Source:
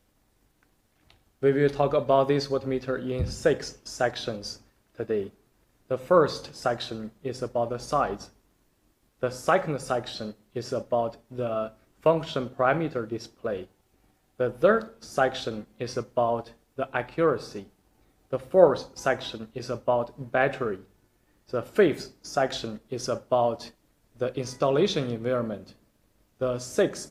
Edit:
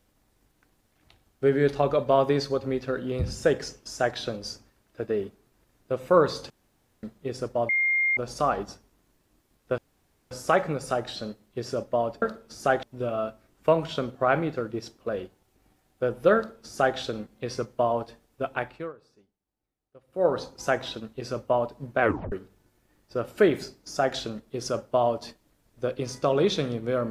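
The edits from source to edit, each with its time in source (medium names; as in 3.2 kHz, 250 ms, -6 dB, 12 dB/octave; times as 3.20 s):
6.50–7.03 s: room tone
7.69 s: add tone 2.12 kHz -20.5 dBFS 0.48 s
9.30 s: insert room tone 0.53 s
14.74–15.35 s: copy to 11.21 s
16.92–18.84 s: dip -23.5 dB, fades 0.39 s
20.39 s: tape stop 0.31 s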